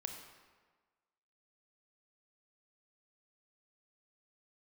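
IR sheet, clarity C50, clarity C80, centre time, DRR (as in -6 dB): 5.5 dB, 7.0 dB, 36 ms, 4.0 dB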